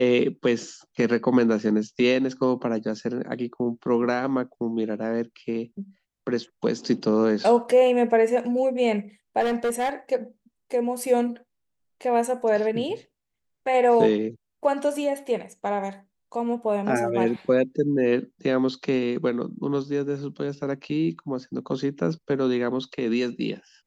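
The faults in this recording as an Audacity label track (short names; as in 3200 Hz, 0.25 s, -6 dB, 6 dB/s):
9.400000	9.900000	clipped -20.5 dBFS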